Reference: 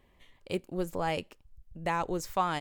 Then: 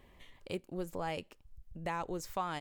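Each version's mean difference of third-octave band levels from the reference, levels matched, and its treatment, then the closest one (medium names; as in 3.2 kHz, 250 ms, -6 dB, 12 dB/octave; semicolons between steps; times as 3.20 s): 2.0 dB: compression 1.5:1, threshold -57 dBFS, peak gain reduction 12 dB; trim +4 dB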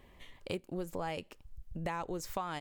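3.5 dB: compression 5:1, threshold -41 dBFS, peak gain reduction 16.5 dB; trim +5.5 dB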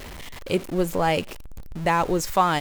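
4.5 dB: jump at every zero crossing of -41.5 dBFS; trim +8.5 dB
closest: first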